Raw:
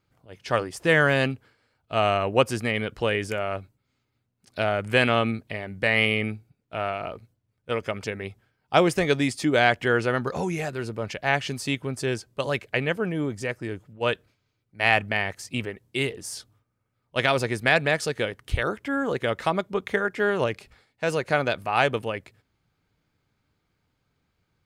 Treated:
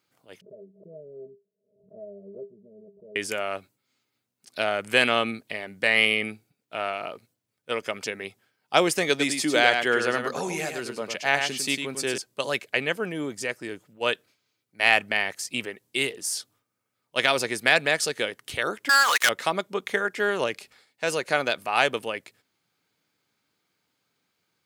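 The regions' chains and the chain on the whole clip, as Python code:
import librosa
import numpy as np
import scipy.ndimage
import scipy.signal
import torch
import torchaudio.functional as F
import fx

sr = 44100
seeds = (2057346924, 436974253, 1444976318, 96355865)

y = fx.chain(x, sr, fx.cheby_ripple(hz=630.0, ripple_db=6),
    fx.stiff_resonator(f0_hz=190.0, decay_s=0.25, stiffness=0.03),
    fx.pre_swell(db_per_s=95.0), at=(0.41, 3.16))
y = fx.chain(y, sr, fx.highpass(hz=110.0, slope=12),
    fx.echo_single(ms=102, db=-6.5), at=(9.09, 12.18))
y = fx.chain(y, sr, fx.highpass(hz=950.0, slope=24),
    fx.leveller(passes=5), at=(18.89, 19.29))
y = scipy.signal.sosfilt(scipy.signal.butter(2, 220.0, 'highpass', fs=sr, output='sos'), y)
y = fx.high_shelf(y, sr, hz=2800.0, db=10.0)
y = y * librosa.db_to_amplitude(-2.0)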